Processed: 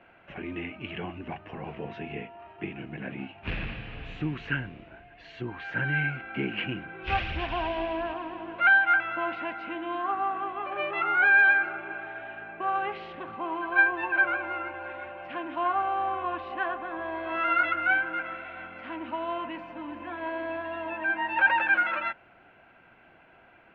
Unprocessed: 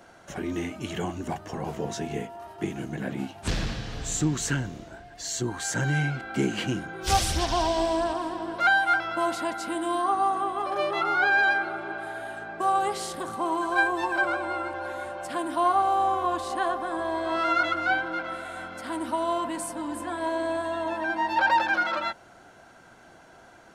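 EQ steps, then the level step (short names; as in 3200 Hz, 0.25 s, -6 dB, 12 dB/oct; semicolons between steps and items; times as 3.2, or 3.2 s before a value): dynamic EQ 1600 Hz, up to +7 dB, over -39 dBFS, Q 3; ladder low-pass 2800 Hz, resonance 70%; air absorption 190 m; +6.0 dB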